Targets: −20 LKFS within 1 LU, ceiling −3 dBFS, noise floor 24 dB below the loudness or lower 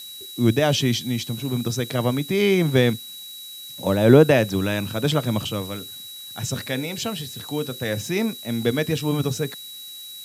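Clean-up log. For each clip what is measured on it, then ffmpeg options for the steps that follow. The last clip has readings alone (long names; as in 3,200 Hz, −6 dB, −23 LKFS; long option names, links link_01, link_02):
interfering tone 3,900 Hz; level of the tone −37 dBFS; background noise floor −38 dBFS; target noise floor −46 dBFS; integrated loudness −22.0 LKFS; sample peak −2.5 dBFS; target loudness −20.0 LKFS
→ -af "bandreject=frequency=3900:width=30"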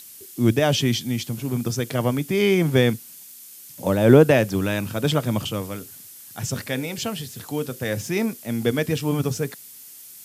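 interfering tone none found; background noise floor −43 dBFS; target noise floor −47 dBFS
→ -af "afftdn=noise_reduction=6:noise_floor=-43"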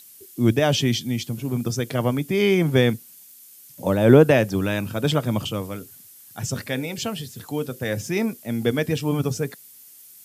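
background noise floor −48 dBFS; integrated loudness −22.5 LKFS; sample peak −2.5 dBFS; target loudness −20.0 LKFS
→ -af "volume=2.5dB,alimiter=limit=-3dB:level=0:latency=1"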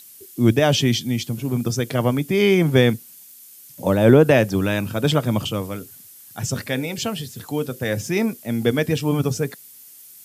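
integrated loudness −20.5 LKFS; sample peak −3.0 dBFS; background noise floor −45 dBFS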